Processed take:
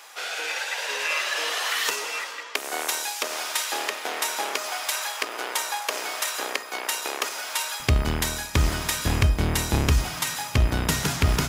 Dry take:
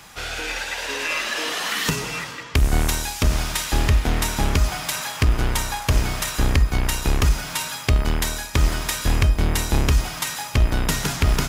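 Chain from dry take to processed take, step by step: high-pass 440 Hz 24 dB/octave, from 7.80 s 51 Hz; trim -1 dB

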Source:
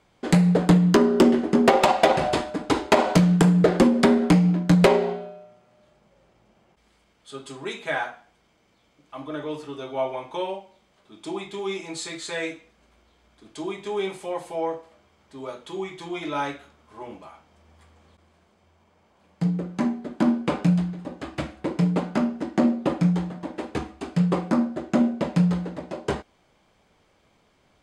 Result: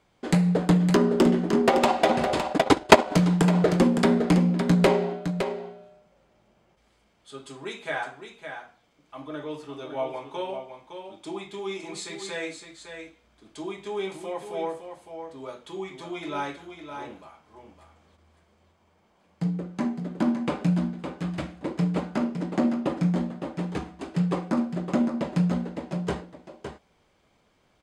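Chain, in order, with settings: delay 561 ms -8 dB; 2.50–3.12 s: transient shaper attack +10 dB, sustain -11 dB; trim -3.5 dB

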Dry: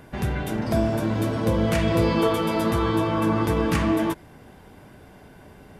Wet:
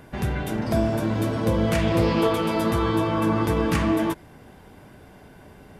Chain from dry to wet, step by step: 1.81–2.51 s: loudspeaker Doppler distortion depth 0.24 ms

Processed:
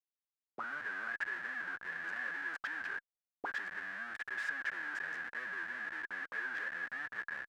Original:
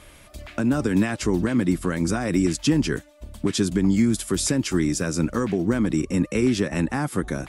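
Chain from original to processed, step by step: dynamic bell 430 Hz, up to +7 dB, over -33 dBFS, Q 0.8; Schmitt trigger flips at -27.5 dBFS; auto-wah 270–1700 Hz, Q 17, up, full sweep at -18 dBFS

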